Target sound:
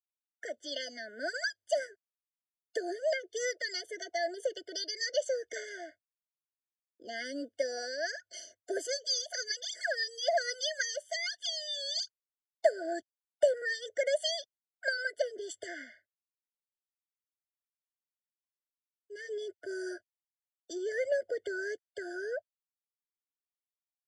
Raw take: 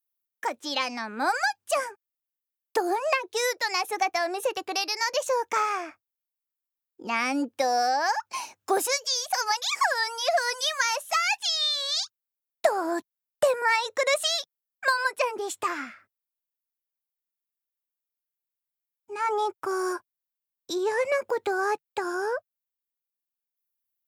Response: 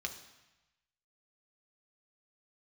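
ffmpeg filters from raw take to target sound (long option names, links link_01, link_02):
-filter_complex "[0:a]agate=range=-33dB:threshold=-44dB:ratio=3:detection=peak,acrossover=split=120[link_01][link_02];[link_01]acrusher=samples=35:mix=1:aa=0.000001[link_03];[link_02]highpass=340,equalizer=frequency=620:width_type=q:width=4:gain=6,equalizer=frequency=4600:width_type=q:width=4:gain=5,equalizer=frequency=7000:width_type=q:width=4:gain=4,lowpass=frequency=8300:width=0.5412,lowpass=frequency=8300:width=1.3066[link_04];[link_03][link_04]amix=inputs=2:normalize=0,afftfilt=real='re*eq(mod(floor(b*sr/1024/720),2),0)':imag='im*eq(mod(floor(b*sr/1024/720),2),0)':win_size=1024:overlap=0.75,volume=-7dB"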